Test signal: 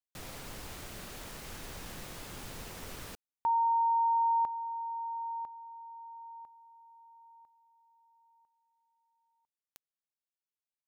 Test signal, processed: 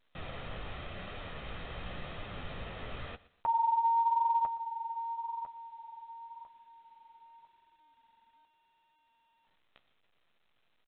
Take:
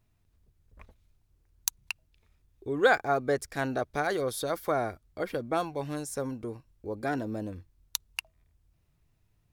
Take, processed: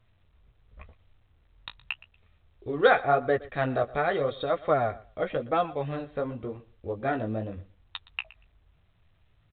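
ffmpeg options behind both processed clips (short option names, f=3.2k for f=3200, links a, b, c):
-af "aecho=1:1:1.6:0.35,flanger=delay=9.7:depth=9:regen=-22:speed=0.89:shape=sinusoidal,aecho=1:1:118|236:0.1|0.016,volume=6dB" -ar 8000 -c:a pcm_alaw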